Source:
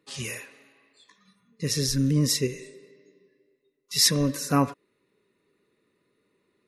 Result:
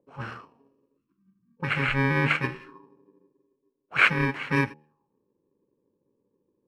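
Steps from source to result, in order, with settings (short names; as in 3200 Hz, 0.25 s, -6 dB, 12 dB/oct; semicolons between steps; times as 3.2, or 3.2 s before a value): FFT order left unsorted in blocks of 64 samples; spectral delete 0.97–1.57, 380–980 Hz; de-hum 75.87 Hz, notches 12; envelope low-pass 560–2000 Hz up, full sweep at -28 dBFS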